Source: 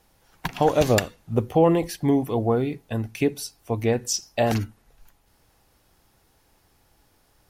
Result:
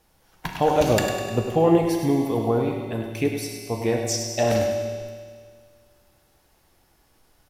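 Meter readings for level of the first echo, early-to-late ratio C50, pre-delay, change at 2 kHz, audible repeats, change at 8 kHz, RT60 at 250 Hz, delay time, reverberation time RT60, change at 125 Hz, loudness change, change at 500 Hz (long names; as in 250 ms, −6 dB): −7.5 dB, 2.0 dB, 5 ms, +0.5 dB, 3, +0.5 dB, 2.0 s, 101 ms, 1.9 s, −0.5 dB, +0.5 dB, +1.0 dB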